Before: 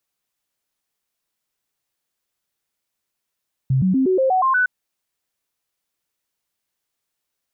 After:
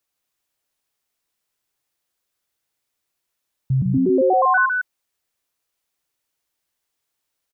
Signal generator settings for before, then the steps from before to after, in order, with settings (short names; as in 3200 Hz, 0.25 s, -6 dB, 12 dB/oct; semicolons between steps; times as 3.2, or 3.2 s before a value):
stepped sine 132 Hz up, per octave 2, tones 8, 0.12 s, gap 0.00 s -14 dBFS
bell 190 Hz -6.5 dB 0.3 oct; on a send: echo 0.155 s -4 dB